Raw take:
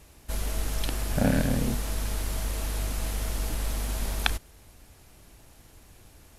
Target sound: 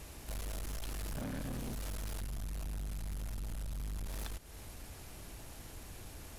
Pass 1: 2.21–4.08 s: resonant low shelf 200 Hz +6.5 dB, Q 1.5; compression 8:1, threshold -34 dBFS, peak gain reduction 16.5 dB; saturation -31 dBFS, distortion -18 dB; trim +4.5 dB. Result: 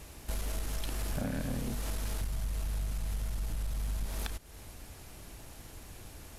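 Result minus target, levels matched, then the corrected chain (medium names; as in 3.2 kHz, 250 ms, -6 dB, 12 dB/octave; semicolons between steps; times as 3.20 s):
saturation: distortion -10 dB
2.21–4.08 s: resonant low shelf 200 Hz +6.5 dB, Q 1.5; compression 8:1, threshold -34 dBFS, peak gain reduction 16.5 dB; saturation -41.5 dBFS, distortion -8 dB; trim +4.5 dB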